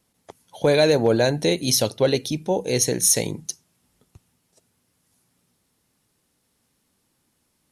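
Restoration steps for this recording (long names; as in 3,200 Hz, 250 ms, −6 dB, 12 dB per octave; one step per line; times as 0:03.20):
clipped peaks rebuilt −8 dBFS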